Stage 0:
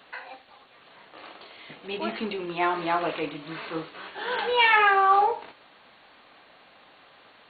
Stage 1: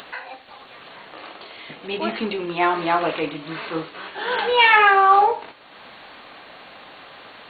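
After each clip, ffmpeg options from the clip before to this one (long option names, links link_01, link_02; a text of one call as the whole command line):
ffmpeg -i in.wav -af "acompressor=mode=upward:threshold=-40dB:ratio=2.5,volume=5.5dB" out.wav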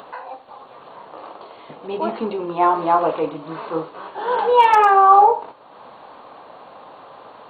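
ffmpeg -i in.wav -af "aeval=exprs='0.596*(abs(mod(val(0)/0.596+3,4)-2)-1)':channel_layout=same,equalizer=frequency=125:width_type=o:width=1:gain=6,equalizer=frequency=250:width_type=o:width=1:gain=3,equalizer=frequency=500:width_type=o:width=1:gain=8,equalizer=frequency=1000:width_type=o:width=1:gain=12,equalizer=frequency=2000:width_type=o:width=1:gain=-8,equalizer=frequency=4000:width_type=o:width=1:gain=-3,volume=-6dB" out.wav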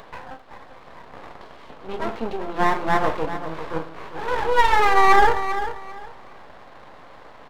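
ffmpeg -i in.wav -af "aeval=exprs='max(val(0),0)':channel_layout=same,aecho=1:1:395|790|1185:0.282|0.062|0.0136" out.wav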